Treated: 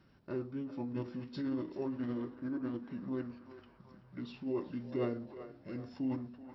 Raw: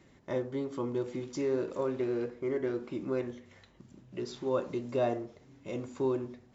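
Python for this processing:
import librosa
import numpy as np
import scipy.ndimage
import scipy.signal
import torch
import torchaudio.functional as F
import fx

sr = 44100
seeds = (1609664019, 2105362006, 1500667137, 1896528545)

y = fx.echo_banded(x, sr, ms=380, feedback_pct=70, hz=1300.0, wet_db=-10)
y = fx.formant_shift(y, sr, semitones=-5)
y = y * 10.0 ** (-5.0 / 20.0)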